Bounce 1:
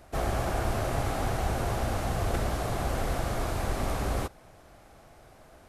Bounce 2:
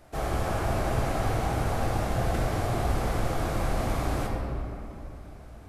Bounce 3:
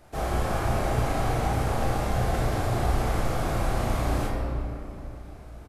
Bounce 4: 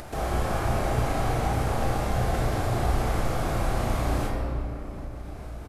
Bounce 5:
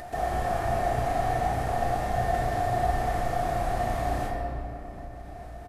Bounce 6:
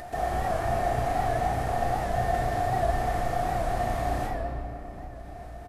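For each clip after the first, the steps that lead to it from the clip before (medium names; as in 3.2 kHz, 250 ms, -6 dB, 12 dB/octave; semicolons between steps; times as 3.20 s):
simulated room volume 120 m³, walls hard, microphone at 0.47 m; trim -2.5 dB
doubling 34 ms -4 dB
upward compressor, threshold -29 dBFS
small resonant body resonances 710/1800 Hz, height 18 dB, ringing for 80 ms; trim -5 dB
warped record 78 rpm, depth 100 cents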